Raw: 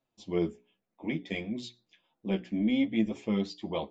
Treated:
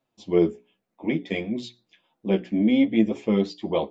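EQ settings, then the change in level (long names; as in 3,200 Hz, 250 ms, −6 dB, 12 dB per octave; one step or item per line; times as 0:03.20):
low-shelf EQ 61 Hz −7.5 dB
high-shelf EQ 4,800 Hz −5.5 dB
dynamic equaliser 430 Hz, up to +5 dB, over −40 dBFS, Q 1.2
+6.0 dB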